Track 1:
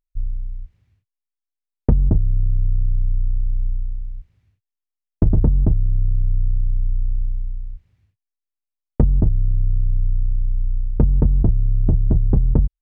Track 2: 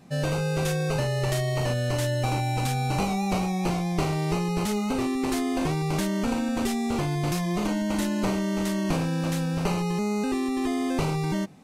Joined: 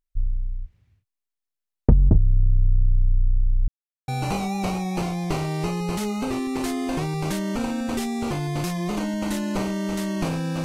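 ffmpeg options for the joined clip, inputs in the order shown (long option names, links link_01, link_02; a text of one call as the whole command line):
ffmpeg -i cue0.wav -i cue1.wav -filter_complex "[0:a]apad=whole_dur=10.64,atrim=end=10.64,asplit=2[link_01][link_02];[link_01]atrim=end=3.68,asetpts=PTS-STARTPTS,afade=type=out:start_time=3.676:duration=0.004:curve=hsin[link_03];[link_02]atrim=start=3.68:end=4.08,asetpts=PTS-STARTPTS,volume=0[link_04];[1:a]atrim=start=2.76:end=9.32,asetpts=PTS-STARTPTS,afade=type=in:duration=0.004:curve=hsin[link_05];[link_03][link_04][link_05]concat=n=3:v=0:a=1" out.wav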